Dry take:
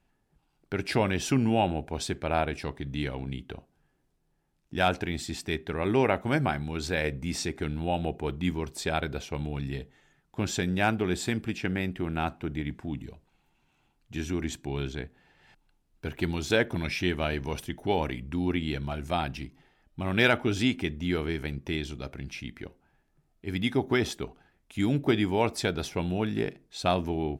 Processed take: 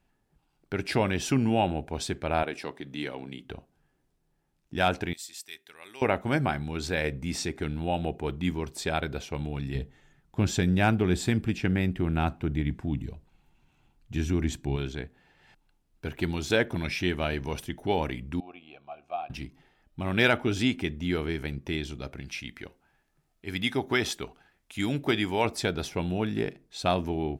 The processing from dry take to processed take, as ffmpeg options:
-filter_complex "[0:a]asettb=1/sr,asplit=3[a][b][c];[a]atrim=end=2.434[d];[b]atrim=start=2.43:end=3.45,asetpts=PTS-STARTPTS,afade=t=in:d=0.004:c=qsin,afade=t=out:st=1.016:d=0.004:c=qsin,highpass=240[e];[c]atrim=start=3.446[f];[d][e]acrossfade=d=0.004:c1=hsin:c2=qsin[g];[g][f]acrossfade=d=0.004:c1=qsin:c2=hsin,asettb=1/sr,asplit=3[h][i][j];[h]atrim=end=5.134[k];[i]atrim=start=5.13:end=6.02,asetpts=PTS-STARTPTS,afade=t=in:d=0.004:c=qsin,afade=t=out:st=0.886:d=0.004:c=qsin,aderivative[l];[j]atrim=start=6.016[m];[k][l]acrossfade=d=0.004:c1=hsin:c2=qsin[n];[n][m]acrossfade=d=0.004:c1=qsin:c2=hsin,asettb=1/sr,asplit=3[o][p][q];[o]atrim=end=9.754[r];[p]atrim=start=9.75:end=14.76,asetpts=PTS-STARTPTS,afade=t=in:d=0.004:c=qsin,afade=t=out:st=5.006:d=0.004:c=qsin,lowshelf=f=190:g=9[s];[q]atrim=start=14.756[t];[r][s]acrossfade=d=0.004:c1=hsin:c2=qsin[u];[u][t]acrossfade=d=0.004:c1=qsin:c2=hsin,asettb=1/sr,asplit=3[v][w][x];[v]atrim=end=18.404[y];[w]atrim=start=18.4:end=19.3,asetpts=PTS-STARTPTS,afade=t=in:d=0.004:c=qsin,afade=t=out:st=0.896:d=0.004:c=qsin,asplit=3[z][aa][ab];[z]bandpass=f=730:t=q:w=8,volume=0dB[ac];[aa]bandpass=f=1.09k:t=q:w=8,volume=-6dB[ad];[ab]bandpass=f=2.44k:t=q:w=8,volume=-9dB[ae];[ac][ad][ae]amix=inputs=3:normalize=0[af];[x]atrim=start=19.296[ag];[y][af]acrossfade=d=0.004:c1=hsin:c2=qsin[ah];[ah][ag]acrossfade=d=0.004:c1=qsin:c2=hsin,asettb=1/sr,asplit=3[ai][aj][ak];[ai]atrim=end=22.204[al];[aj]atrim=start=22.2:end=25.45,asetpts=PTS-STARTPTS,afade=t=in:d=0.004:c=qsin,afade=t=out:st=3.246:d=0.004:c=qsin,tiltshelf=f=730:g=-4[am];[ak]atrim=start=25.446[an];[al][am]acrossfade=d=0.004:c1=hsin:c2=qsin[ao];[ao][an]acrossfade=d=0.004:c1=qsin:c2=hsin"

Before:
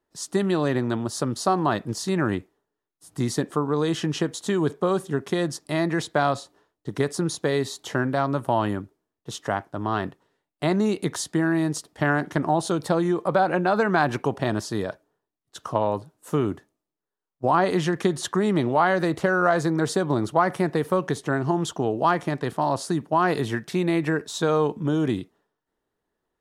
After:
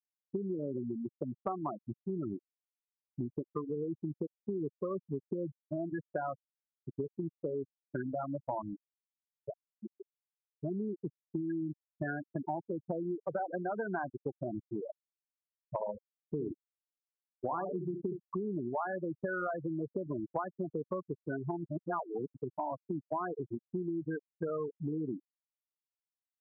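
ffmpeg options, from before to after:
-filter_complex "[0:a]asettb=1/sr,asplit=3[a][b][c];[a]atrim=end=4.954[d];[b]atrim=start=4.95:end=5.55,asetpts=PTS-STARTPTS,afade=t=in:d=0.004:c=qsin,afade=t=out:st=0.596:d=0.004:c=qsin,lowshelf=f=390:g=3[e];[c]atrim=start=5.546[f];[d][e]acrossfade=d=0.004:c1=hsin:c2=qsin[g];[g][f]acrossfade=d=0.004:c1=qsin:c2=hsin,asplit=3[h][i][j];[h]afade=t=out:st=8.61:d=0.02[k];[i]equalizer=f=1k:t=o:w=0.81:g=-14,afade=t=in:st=8.61:d=0.02,afade=t=out:st=11.48:d=0.02[l];[j]afade=t=in:st=11.48:d=0.02[m];[k][l][m]amix=inputs=3:normalize=0,asettb=1/sr,asplit=3[n][o][p];[n]atrim=end=15.714[q];[o]atrim=start=15.71:end=18.2,asetpts=PTS-STARTPTS,afade=t=in:d=0.004:c=qsin,afade=t=out:st=2.486:d=0.004:c=qsin,aecho=1:1:67|134|201:0.447|0.0804|0.0145,atrim=end_sample=109809[r];[p]atrim=start=18.196[s];[q][r]acrossfade=d=0.004:c1=hsin:c2=qsin[t];[t][s]acrossfade=d=0.004:c1=qsin:c2=hsin,asplit=3[u][v][w];[u]atrim=end=21.702[x];[v]atrim=start=21.698:end=22.352,asetpts=PTS-STARTPTS,areverse[y];[w]atrim=start=22.348[z];[x][y]acrossfade=d=0.004:c1=hsin:c2=hsin[aa];[aa][z]acrossfade=d=0.004:c1=hsin:c2=hsin,afftfilt=real='re*gte(hypot(re,im),0.282)':imag='im*gte(hypot(re,im),0.282)':win_size=1024:overlap=0.75,lowshelf=f=140:g=-8.5,acompressor=threshold=-32dB:ratio=4,volume=-2.5dB"

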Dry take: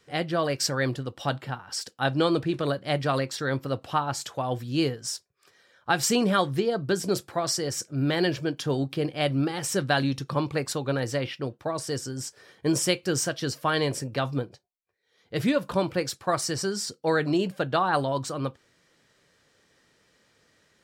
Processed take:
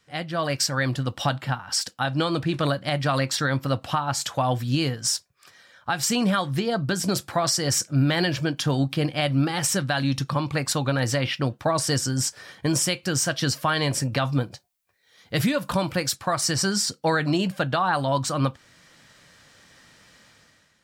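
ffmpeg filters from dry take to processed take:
-filter_complex "[0:a]asettb=1/sr,asplit=3[a][b][c];[a]atrim=end=14.414[d];[b]atrim=start=14.41:end=16.16,asetpts=PTS-STARTPTS,afade=t=in:d=0.004:c=qsin,afade=t=out:st=1.746:d=0.004:c=qsin,highshelf=f=7.6k:g=7[e];[c]atrim=start=16.156[f];[d][e]acrossfade=d=0.004:c1=hsin:c2=qsin[g];[g][f]acrossfade=d=0.004:c1=qsin:c2=hsin,equalizer=f=410:w=2.1:g=-10.5,dynaudnorm=f=130:g=9:m=13dB,alimiter=limit=-12dB:level=0:latency=1:release=271,volume=-1dB"

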